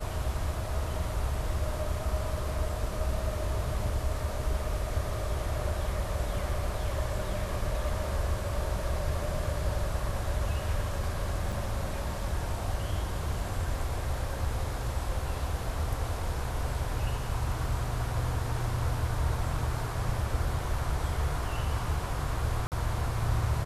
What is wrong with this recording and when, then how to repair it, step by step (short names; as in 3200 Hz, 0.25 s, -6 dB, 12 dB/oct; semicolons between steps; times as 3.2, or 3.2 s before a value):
11.52 gap 4.5 ms
22.67–22.72 gap 48 ms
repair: interpolate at 11.52, 4.5 ms; interpolate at 22.67, 48 ms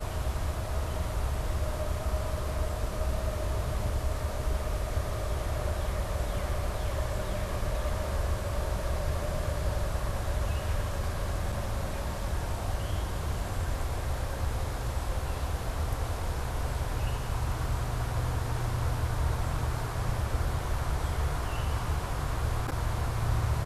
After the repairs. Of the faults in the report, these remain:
none